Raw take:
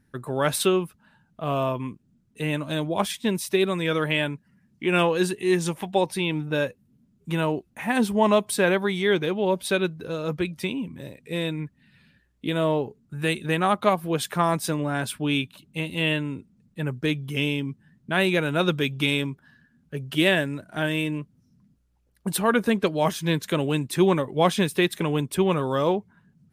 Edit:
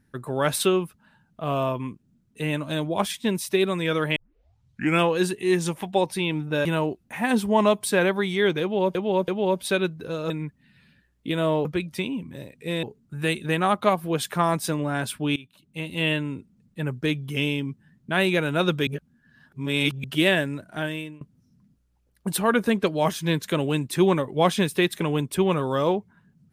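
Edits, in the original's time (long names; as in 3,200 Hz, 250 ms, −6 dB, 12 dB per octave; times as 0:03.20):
0:04.16: tape start 0.84 s
0:06.65–0:07.31: remove
0:09.28–0:09.61: repeat, 3 plays
0:10.30–0:11.48: move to 0:12.83
0:15.36–0:16.03: fade in, from −22 dB
0:18.87–0:20.04: reverse
0:20.67–0:21.21: fade out, to −22.5 dB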